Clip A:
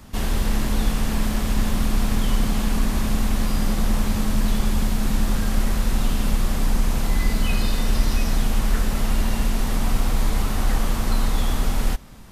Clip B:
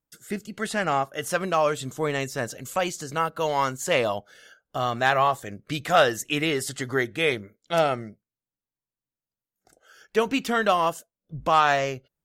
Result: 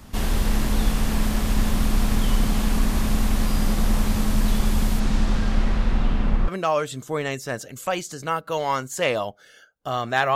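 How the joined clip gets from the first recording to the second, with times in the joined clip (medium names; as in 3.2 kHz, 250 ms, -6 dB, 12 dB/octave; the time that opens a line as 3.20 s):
clip A
4.99–6.48 s: low-pass 7.4 kHz -> 1.8 kHz
6.48 s: go over to clip B from 1.37 s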